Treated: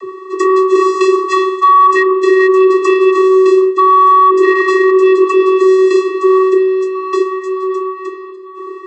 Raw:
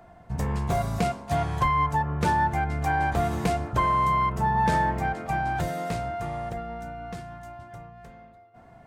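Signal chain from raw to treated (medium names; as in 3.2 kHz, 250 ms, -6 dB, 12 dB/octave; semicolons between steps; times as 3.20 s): one-sided wavefolder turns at -20 dBFS; vocoder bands 32, square 377 Hz; feedback echo behind a band-pass 378 ms, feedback 79%, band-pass 1.6 kHz, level -23 dB; reverse; compression 8:1, threshold -34 dBFS, peak gain reduction 16.5 dB; reverse; loudness maximiser +29.5 dB; trim -1 dB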